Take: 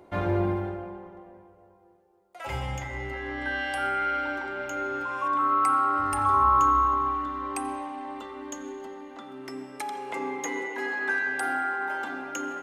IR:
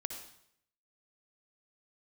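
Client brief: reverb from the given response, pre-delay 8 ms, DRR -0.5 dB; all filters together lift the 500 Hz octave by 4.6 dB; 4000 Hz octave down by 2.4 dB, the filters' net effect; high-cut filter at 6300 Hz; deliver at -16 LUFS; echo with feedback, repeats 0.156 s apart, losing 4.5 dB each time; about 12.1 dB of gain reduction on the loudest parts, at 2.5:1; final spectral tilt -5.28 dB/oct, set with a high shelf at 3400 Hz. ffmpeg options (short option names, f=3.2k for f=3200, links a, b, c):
-filter_complex "[0:a]lowpass=6.3k,equalizer=f=500:t=o:g=6.5,highshelf=f=3.4k:g=7,equalizer=f=4k:t=o:g=-8.5,acompressor=threshold=-35dB:ratio=2.5,aecho=1:1:156|312|468|624|780|936|1092|1248|1404:0.596|0.357|0.214|0.129|0.0772|0.0463|0.0278|0.0167|0.01,asplit=2[a][b];[1:a]atrim=start_sample=2205,adelay=8[c];[b][c]afir=irnorm=-1:irlink=0,volume=1dB[d];[a][d]amix=inputs=2:normalize=0,volume=16.5dB"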